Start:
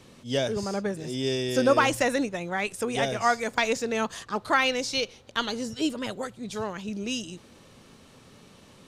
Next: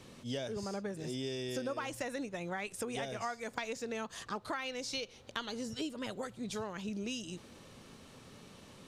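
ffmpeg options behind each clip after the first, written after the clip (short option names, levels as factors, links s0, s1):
-af "acompressor=threshold=0.02:ratio=6,volume=0.794"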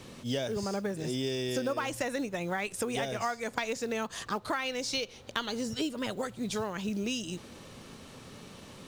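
-af "acrusher=bits=7:mode=log:mix=0:aa=0.000001,volume=2"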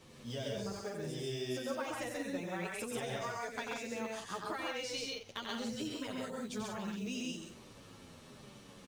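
-filter_complex "[0:a]asplit=2[s0][s1];[s1]aecho=0:1:90.38|134.1|180.8:0.501|0.794|0.447[s2];[s0][s2]amix=inputs=2:normalize=0,asplit=2[s3][s4];[s4]adelay=9.3,afreqshift=-1.1[s5];[s3][s5]amix=inputs=2:normalize=1,volume=0.473"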